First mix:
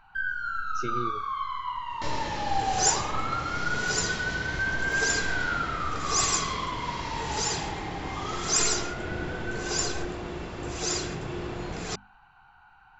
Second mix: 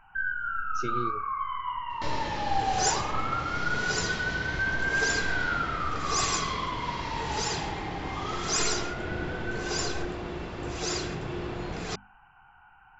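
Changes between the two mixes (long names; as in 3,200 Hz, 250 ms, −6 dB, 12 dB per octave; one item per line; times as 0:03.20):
first sound: add linear-phase brick-wall low-pass 3,100 Hz
second sound: add low-pass filter 5,700 Hz 12 dB per octave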